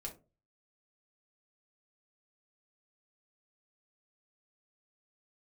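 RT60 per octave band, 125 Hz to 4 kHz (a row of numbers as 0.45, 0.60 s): 0.50, 0.35, 0.35, 0.25, 0.20, 0.15 s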